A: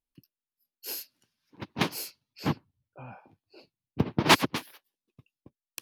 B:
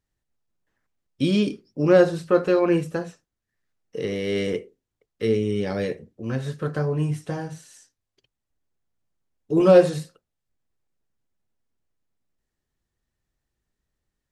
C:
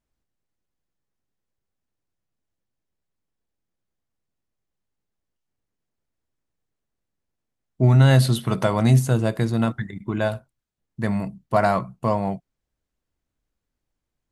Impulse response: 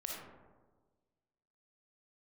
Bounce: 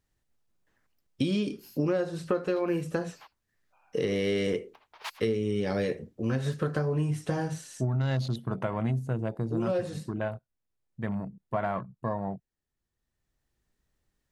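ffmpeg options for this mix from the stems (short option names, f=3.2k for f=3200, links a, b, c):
-filter_complex "[0:a]highpass=f=750:w=0.5412,highpass=f=750:w=1.3066,adelay=750,volume=-17dB,afade=t=out:st=4.95:d=0.42:silence=0.446684[a];[1:a]volume=3dB[b];[2:a]afwtdn=0.0224,volume=-8dB,asplit=2[c][d];[d]apad=whole_len=631145[e];[b][e]sidechaincompress=threshold=-41dB:ratio=4:attack=33:release=1220[f];[a][f][c]amix=inputs=3:normalize=0,acompressor=threshold=-24dB:ratio=16"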